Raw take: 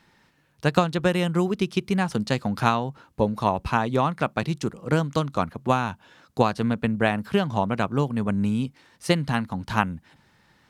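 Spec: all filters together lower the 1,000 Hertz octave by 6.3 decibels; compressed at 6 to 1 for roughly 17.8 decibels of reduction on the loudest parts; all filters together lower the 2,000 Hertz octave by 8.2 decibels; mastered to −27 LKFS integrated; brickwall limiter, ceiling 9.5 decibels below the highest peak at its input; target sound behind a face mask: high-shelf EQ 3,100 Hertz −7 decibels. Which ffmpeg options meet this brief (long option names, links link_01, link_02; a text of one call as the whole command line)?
ffmpeg -i in.wav -af "equalizer=frequency=1000:width_type=o:gain=-6,equalizer=frequency=2000:width_type=o:gain=-6.5,acompressor=threshold=-36dB:ratio=6,alimiter=level_in=8dB:limit=-24dB:level=0:latency=1,volume=-8dB,highshelf=frequency=3100:gain=-7,volume=16.5dB" out.wav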